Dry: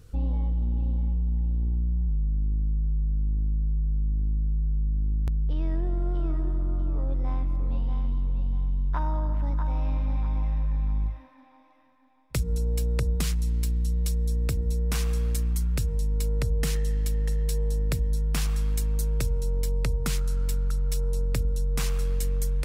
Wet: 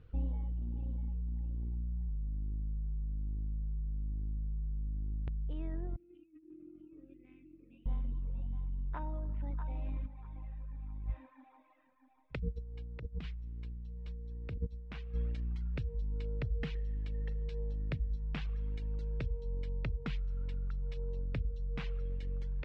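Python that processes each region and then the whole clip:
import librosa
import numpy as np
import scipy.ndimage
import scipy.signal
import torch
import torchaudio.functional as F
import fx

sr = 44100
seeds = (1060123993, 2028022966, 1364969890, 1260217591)

y = fx.chain(x, sr, fx.double_bandpass(hz=900.0, octaves=3.0),
    fx.over_compress(threshold_db=-44.0, ratio=-1.0), at=(5.96, 7.86))
y = fx.chain(y, sr, fx.over_compress(threshold_db=-28.0, ratio=-0.5),
    fx.high_shelf(hz=8200.0, db=-3.0), at=(10.06, 15.15))
y = scipy.signal.sosfilt(scipy.signal.butter(4, 3100.0, 'lowpass', fs=sr, output='sos'), y)
y = fx.dereverb_blind(y, sr, rt60_s=1.3)
y = fx.dynamic_eq(y, sr, hz=1100.0, q=1.3, threshold_db=-54.0, ratio=4.0, max_db=-5)
y = y * 10.0 ** (-6.5 / 20.0)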